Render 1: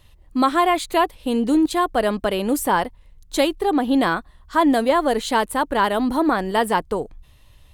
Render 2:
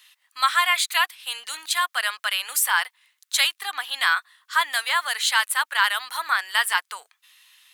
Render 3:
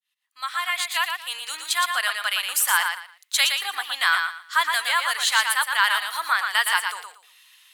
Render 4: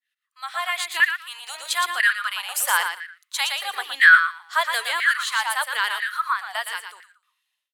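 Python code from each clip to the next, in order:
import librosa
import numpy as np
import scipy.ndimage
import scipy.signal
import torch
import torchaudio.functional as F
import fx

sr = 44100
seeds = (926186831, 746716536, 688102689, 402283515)

y1 = scipy.signal.sosfilt(scipy.signal.butter(4, 1400.0, 'highpass', fs=sr, output='sos'), x)
y1 = F.gain(torch.from_numpy(y1), 7.0).numpy()
y2 = fx.fade_in_head(y1, sr, length_s=1.44)
y2 = fx.echo_feedback(y2, sr, ms=116, feedback_pct=23, wet_db=-5.5)
y3 = fx.fade_out_tail(y2, sr, length_s=2.4)
y3 = fx.rotary(y3, sr, hz=1.0)
y3 = fx.filter_lfo_highpass(y3, sr, shape='saw_down', hz=1.0, low_hz=300.0, high_hz=1900.0, q=7.5)
y3 = F.gain(torch.from_numpy(y3), -1.0).numpy()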